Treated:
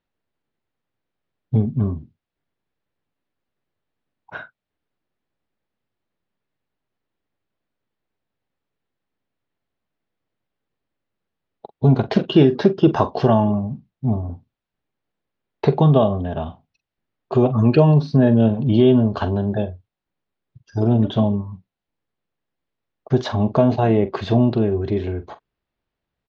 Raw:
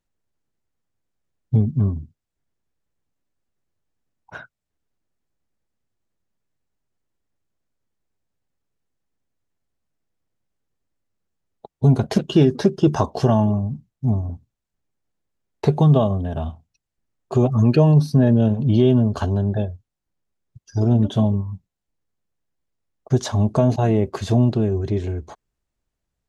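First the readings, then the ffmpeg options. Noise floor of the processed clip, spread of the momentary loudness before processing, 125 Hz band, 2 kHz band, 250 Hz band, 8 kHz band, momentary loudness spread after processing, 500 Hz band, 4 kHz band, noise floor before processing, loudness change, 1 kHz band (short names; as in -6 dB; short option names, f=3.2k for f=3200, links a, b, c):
-85 dBFS, 12 LU, -1.0 dB, +3.5 dB, +1.5 dB, n/a, 15 LU, +3.0 dB, +2.0 dB, -82 dBFS, +1.0 dB, +3.5 dB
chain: -filter_complex "[0:a]lowpass=f=4.1k:w=0.5412,lowpass=f=4.1k:w=1.3066,lowshelf=f=110:g=-11,asplit=2[a][b];[b]adelay=44,volume=-13.5dB[c];[a][c]amix=inputs=2:normalize=0,volume=3.5dB"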